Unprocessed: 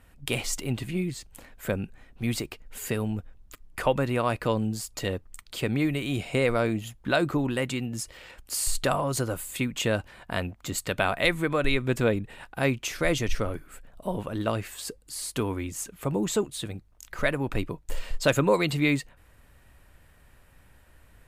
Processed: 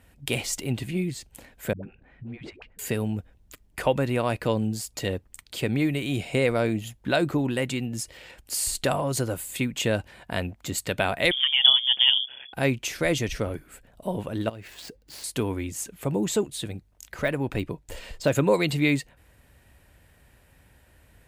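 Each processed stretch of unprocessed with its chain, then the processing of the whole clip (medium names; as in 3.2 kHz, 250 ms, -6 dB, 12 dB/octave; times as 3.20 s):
1.73–2.79 s: Chebyshev low-pass 2.1 kHz + compression 3:1, threshold -38 dBFS + phase dispersion highs, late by 104 ms, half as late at 390 Hz
11.31–12.53 s: tilt shelf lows +6.5 dB, about 1.4 kHz + AM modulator 130 Hz, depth 60% + frequency inversion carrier 3.4 kHz
14.49–15.24 s: median filter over 5 samples + compression, threshold -38 dBFS
17.16–18.35 s: treble shelf 8.7 kHz -3.5 dB + de-esser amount 80%
whole clip: high-pass 44 Hz; peaking EQ 1.2 kHz -6 dB 0.54 oct; trim +1.5 dB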